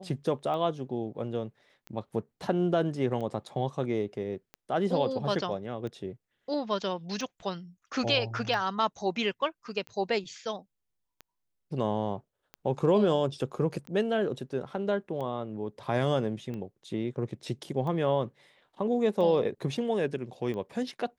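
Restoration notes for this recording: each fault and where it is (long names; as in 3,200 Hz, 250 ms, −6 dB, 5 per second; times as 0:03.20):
scratch tick 45 rpm −27 dBFS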